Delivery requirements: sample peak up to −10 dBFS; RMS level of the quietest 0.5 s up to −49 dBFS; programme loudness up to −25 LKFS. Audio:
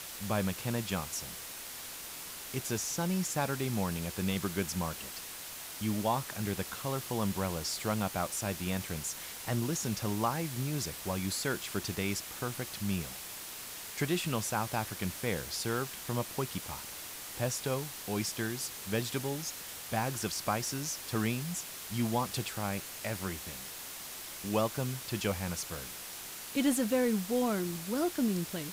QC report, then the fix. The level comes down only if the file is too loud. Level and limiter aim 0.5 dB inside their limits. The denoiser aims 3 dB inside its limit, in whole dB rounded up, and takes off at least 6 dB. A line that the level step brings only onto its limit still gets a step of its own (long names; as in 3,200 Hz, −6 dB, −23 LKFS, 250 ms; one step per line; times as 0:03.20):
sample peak −17.5 dBFS: in spec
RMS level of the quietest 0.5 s −44 dBFS: out of spec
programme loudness −34.5 LKFS: in spec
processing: broadband denoise 8 dB, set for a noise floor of −44 dBFS